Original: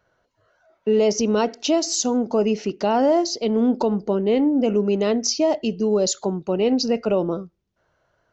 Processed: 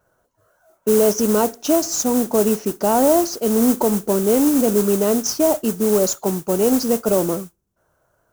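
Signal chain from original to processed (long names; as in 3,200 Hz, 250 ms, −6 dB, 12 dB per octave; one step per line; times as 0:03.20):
noise that follows the level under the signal 10 dB
flat-topped bell 3,000 Hz −9 dB
level +2.5 dB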